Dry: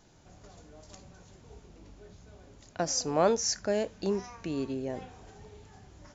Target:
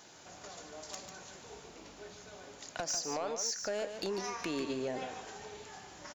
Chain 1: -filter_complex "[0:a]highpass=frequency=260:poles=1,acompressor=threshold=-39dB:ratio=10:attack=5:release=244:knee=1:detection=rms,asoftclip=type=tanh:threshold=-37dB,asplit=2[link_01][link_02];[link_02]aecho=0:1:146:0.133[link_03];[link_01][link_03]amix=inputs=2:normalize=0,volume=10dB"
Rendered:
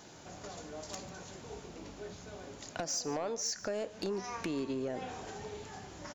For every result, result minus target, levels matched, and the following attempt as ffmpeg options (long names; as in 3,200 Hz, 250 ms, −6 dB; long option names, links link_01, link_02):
echo-to-direct −9.5 dB; 250 Hz band +3.5 dB
-filter_complex "[0:a]highpass=frequency=260:poles=1,acompressor=threshold=-39dB:ratio=10:attack=5:release=244:knee=1:detection=rms,asoftclip=type=tanh:threshold=-37dB,asplit=2[link_01][link_02];[link_02]aecho=0:1:146:0.398[link_03];[link_01][link_03]amix=inputs=2:normalize=0,volume=10dB"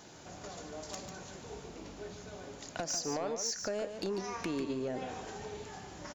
250 Hz band +3.5 dB
-filter_complex "[0:a]highpass=frequency=810:poles=1,acompressor=threshold=-39dB:ratio=10:attack=5:release=244:knee=1:detection=rms,asoftclip=type=tanh:threshold=-37dB,asplit=2[link_01][link_02];[link_02]aecho=0:1:146:0.398[link_03];[link_01][link_03]amix=inputs=2:normalize=0,volume=10dB"